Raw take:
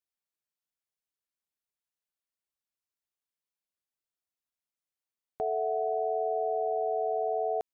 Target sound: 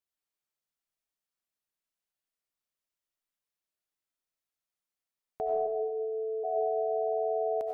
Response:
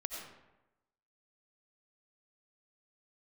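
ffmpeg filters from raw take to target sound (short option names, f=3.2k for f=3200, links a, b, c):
-filter_complex "[0:a]asplit=3[a][b][c];[a]afade=t=out:st=5.66:d=0.02[d];[b]asuperpass=centerf=350:order=20:qfactor=0.88,afade=t=in:st=5.66:d=0.02,afade=t=out:st=6.43:d=0.02[e];[c]afade=t=in:st=6.43:d=0.02[f];[d][e][f]amix=inputs=3:normalize=0[g];[1:a]atrim=start_sample=2205[h];[g][h]afir=irnorm=-1:irlink=0,volume=1dB"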